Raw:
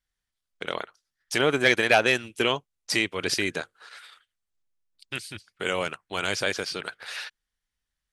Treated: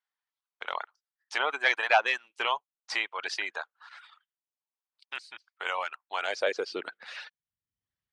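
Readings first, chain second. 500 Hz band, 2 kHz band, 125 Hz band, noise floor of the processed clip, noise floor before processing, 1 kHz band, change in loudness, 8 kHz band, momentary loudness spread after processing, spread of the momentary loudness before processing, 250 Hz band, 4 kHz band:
-7.0 dB, -3.5 dB, under -30 dB, under -85 dBFS, -85 dBFS, +0.5 dB, -4.5 dB, -13.0 dB, 18 LU, 17 LU, -17.5 dB, -6.5 dB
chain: air absorption 120 m; high-pass sweep 890 Hz -> 100 Hz, 6.12–7.62; reverb removal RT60 0.62 s; gain -3.5 dB

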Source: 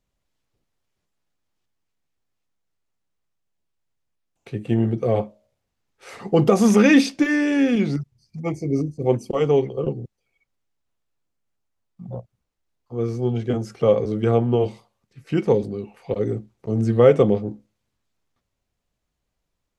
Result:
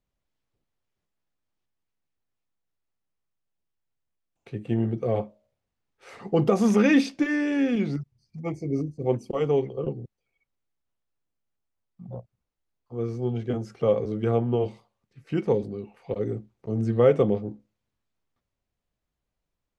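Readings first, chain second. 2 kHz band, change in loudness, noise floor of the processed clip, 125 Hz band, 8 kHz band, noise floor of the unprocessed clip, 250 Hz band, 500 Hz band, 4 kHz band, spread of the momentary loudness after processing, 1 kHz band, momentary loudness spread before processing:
-6.0 dB, -5.0 dB, -83 dBFS, -5.0 dB, -9.5 dB, -78 dBFS, -5.0 dB, -5.0 dB, -7.0 dB, 18 LU, -5.0 dB, 18 LU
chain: high shelf 5600 Hz -7.5 dB; gain -5 dB

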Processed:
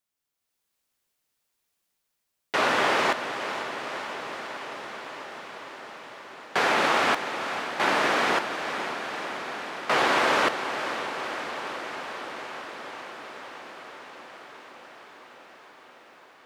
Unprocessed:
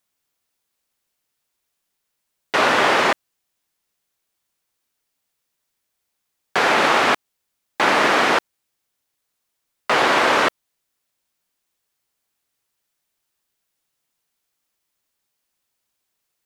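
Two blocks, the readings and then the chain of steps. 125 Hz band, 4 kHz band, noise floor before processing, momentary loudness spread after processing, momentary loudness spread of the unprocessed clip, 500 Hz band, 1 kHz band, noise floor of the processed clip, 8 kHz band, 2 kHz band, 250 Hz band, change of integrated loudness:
-5.0 dB, -5.0 dB, -77 dBFS, 20 LU, 8 LU, -5.0 dB, -5.0 dB, -80 dBFS, -5.0 dB, -5.0 dB, -5.5 dB, -9.0 dB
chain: AGC gain up to 7 dB; diffused feedback echo 0.508 s, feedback 78%, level -9 dB; gain -9 dB

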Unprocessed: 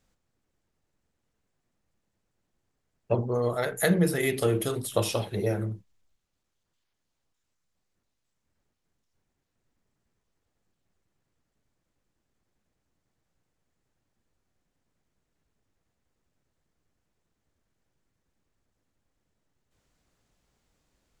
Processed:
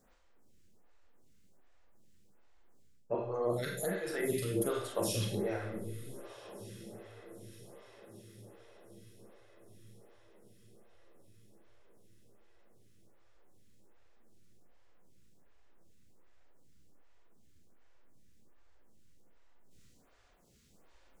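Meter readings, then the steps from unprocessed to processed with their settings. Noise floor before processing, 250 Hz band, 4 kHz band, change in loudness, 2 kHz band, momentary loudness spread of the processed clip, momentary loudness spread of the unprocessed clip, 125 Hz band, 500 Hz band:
-80 dBFS, -8.5 dB, -6.5 dB, -9.0 dB, -9.0 dB, 21 LU, 7 LU, -10.0 dB, -6.5 dB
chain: reverse; compressor 12:1, threshold -36 dBFS, peak gain reduction 18.5 dB; reverse; diffused feedback echo 1.43 s, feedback 51%, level -15.5 dB; Schroeder reverb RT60 0.64 s, combs from 32 ms, DRR 1.5 dB; photocell phaser 1.3 Hz; gain +7.5 dB

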